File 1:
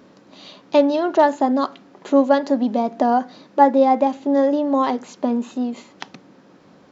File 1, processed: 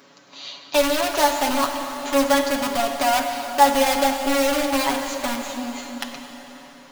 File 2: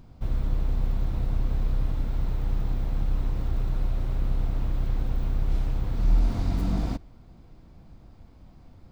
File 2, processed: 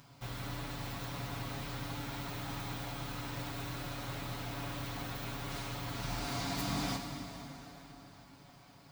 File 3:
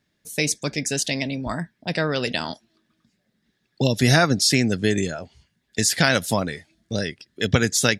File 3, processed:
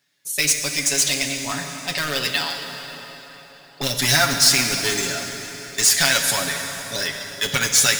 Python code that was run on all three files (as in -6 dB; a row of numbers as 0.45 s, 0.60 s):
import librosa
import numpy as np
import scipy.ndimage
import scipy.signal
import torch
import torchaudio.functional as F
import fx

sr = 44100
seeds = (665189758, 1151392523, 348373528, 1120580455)

p1 = scipy.signal.sosfilt(scipy.signal.butter(2, 200.0, 'highpass', fs=sr, output='sos'), x)
p2 = fx.high_shelf(p1, sr, hz=5000.0, db=5.0)
p3 = (np.mod(10.0 ** (15.5 / 20.0) * p2 + 1.0, 2.0) - 1.0) / 10.0 ** (15.5 / 20.0)
p4 = p2 + (p3 * 10.0 ** (-6.0 / 20.0))
p5 = fx.peak_eq(p4, sr, hz=300.0, db=-12.0, octaves=2.5)
p6 = fx.notch(p5, sr, hz=470.0, q=12.0)
p7 = p6 + 0.71 * np.pad(p6, (int(7.1 * sr / 1000.0), 0))[:len(p6)]
y = fx.rev_plate(p7, sr, seeds[0], rt60_s=4.3, hf_ratio=0.8, predelay_ms=0, drr_db=4.0)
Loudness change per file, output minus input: -2.0 LU, -10.0 LU, +3.0 LU